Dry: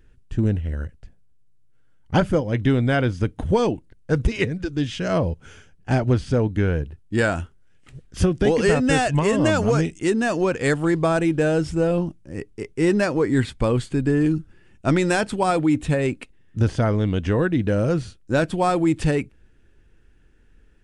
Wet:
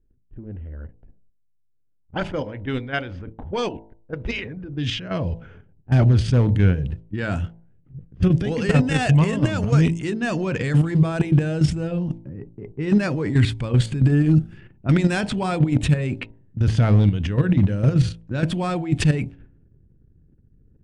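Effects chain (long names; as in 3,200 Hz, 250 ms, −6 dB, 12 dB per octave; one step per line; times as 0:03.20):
transient designer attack −3 dB, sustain +9 dB
parametric band 130 Hz −3.5 dB 1.9 octaves, from 0:04.57 +7 dB, from 0:05.91 +13.5 dB
output level in coarse steps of 10 dB
hard clipping −5 dBFS, distortion −30 dB
parametric band 2,800 Hz +7.5 dB 2 octaves
hum removal 55.68 Hz, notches 18
low-pass that shuts in the quiet parts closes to 370 Hz, open at −15 dBFS
level −3.5 dB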